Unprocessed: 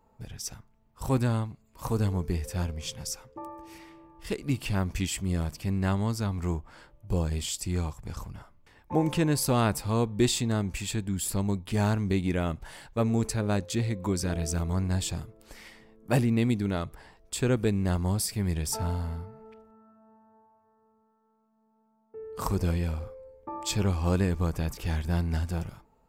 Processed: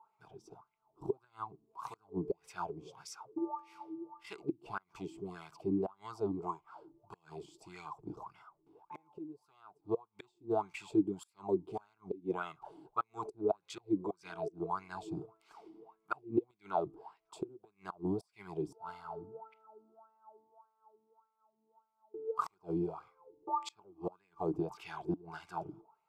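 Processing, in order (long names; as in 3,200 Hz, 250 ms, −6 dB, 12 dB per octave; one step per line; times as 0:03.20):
phaser with its sweep stopped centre 360 Hz, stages 8
gate with flip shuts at −21 dBFS, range −28 dB
LFO wah 1.7 Hz 290–2,100 Hz, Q 7.5
level +14 dB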